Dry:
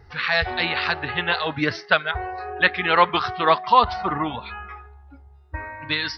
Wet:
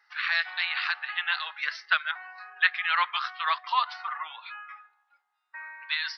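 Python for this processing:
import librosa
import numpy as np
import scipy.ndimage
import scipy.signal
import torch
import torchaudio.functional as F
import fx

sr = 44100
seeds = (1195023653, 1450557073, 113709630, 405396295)

y = scipy.signal.sosfilt(scipy.signal.butter(4, 1200.0, 'highpass', fs=sr, output='sos'), x)
y = fx.high_shelf(y, sr, hz=4600.0, db=-6.0)
y = F.gain(torch.from_numpy(y), -3.0).numpy()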